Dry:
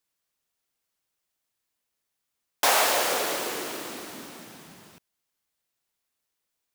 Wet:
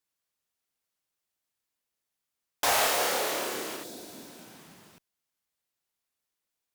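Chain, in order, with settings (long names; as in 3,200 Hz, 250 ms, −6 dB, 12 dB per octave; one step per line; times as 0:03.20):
0:02.64–0:03.76: flutter between parallel walls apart 4.8 metres, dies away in 0.34 s
asymmetric clip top −18 dBFS
0:03.86–0:04.51: healed spectral selection 760–3,300 Hz after
level −4 dB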